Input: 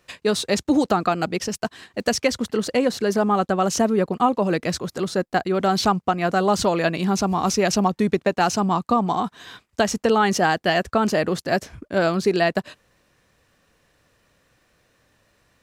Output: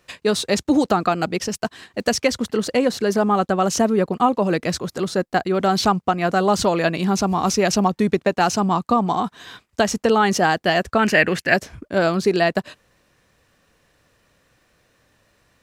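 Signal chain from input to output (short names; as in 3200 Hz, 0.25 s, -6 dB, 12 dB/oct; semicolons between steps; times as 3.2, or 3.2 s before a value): 10.99–11.54 band shelf 2100 Hz +12 dB 1.1 oct; gain +1.5 dB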